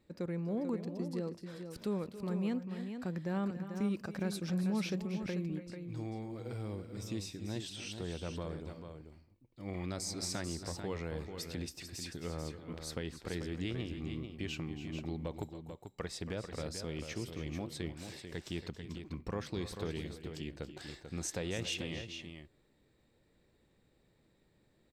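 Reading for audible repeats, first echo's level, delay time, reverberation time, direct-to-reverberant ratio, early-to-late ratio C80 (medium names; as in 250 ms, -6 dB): 2, -13.0 dB, 278 ms, no reverb, no reverb, no reverb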